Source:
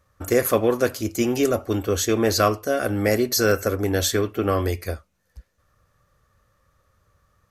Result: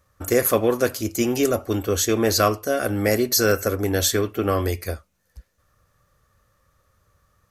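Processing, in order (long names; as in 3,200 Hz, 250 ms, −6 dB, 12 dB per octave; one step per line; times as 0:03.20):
high-shelf EQ 6,100 Hz +5 dB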